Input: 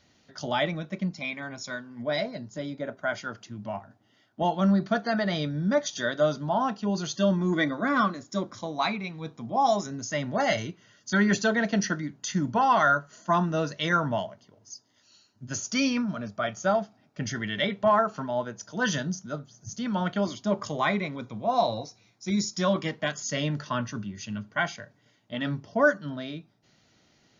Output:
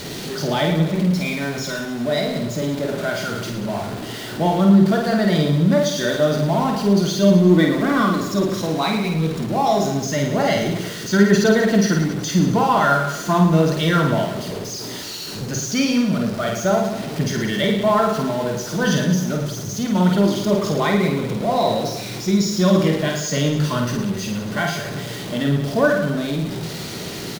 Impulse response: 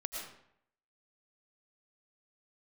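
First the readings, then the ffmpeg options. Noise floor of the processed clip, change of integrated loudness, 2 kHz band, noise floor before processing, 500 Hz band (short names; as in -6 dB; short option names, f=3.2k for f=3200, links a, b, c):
-30 dBFS, +8.5 dB, +4.5 dB, -65 dBFS, +9.0 dB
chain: -af "aeval=exprs='val(0)+0.5*0.0316*sgn(val(0))':c=same,equalizer=f=160:t=o:w=0.67:g=9,equalizer=f=400:t=o:w=0.67:g=11,equalizer=f=4k:t=o:w=0.67:g=4,aecho=1:1:50|110|182|268.4|372.1:0.631|0.398|0.251|0.158|0.1"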